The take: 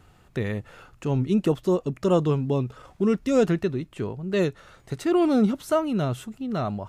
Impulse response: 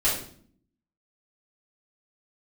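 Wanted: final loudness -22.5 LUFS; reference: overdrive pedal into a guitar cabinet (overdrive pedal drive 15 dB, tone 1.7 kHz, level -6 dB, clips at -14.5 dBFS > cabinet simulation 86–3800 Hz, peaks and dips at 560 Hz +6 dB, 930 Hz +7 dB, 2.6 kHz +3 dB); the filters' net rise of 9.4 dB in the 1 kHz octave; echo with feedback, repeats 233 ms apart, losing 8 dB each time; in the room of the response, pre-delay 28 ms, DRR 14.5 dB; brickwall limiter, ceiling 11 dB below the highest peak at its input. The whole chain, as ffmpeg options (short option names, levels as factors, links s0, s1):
-filter_complex "[0:a]equalizer=f=1000:t=o:g=7,alimiter=limit=0.119:level=0:latency=1,aecho=1:1:233|466|699|932|1165:0.398|0.159|0.0637|0.0255|0.0102,asplit=2[s0][s1];[1:a]atrim=start_sample=2205,adelay=28[s2];[s1][s2]afir=irnorm=-1:irlink=0,volume=0.0473[s3];[s0][s3]amix=inputs=2:normalize=0,asplit=2[s4][s5];[s5]highpass=f=720:p=1,volume=5.62,asoftclip=type=tanh:threshold=0.188[s6];[s4][s6]amix=inputs=2:normalize=0,lowpass=f=1700:p=1,volume=0.501,highpass=86,equalizer=f=560:t=q:w=4:g=6,equalizer=f=930:t=q:w=4:g=7,equalizer=f=2600:t=q:w=4:g=3,lowpass=f=3800:w=0.5412,lowpass=f=3800:w=1.3066,volume=1.26"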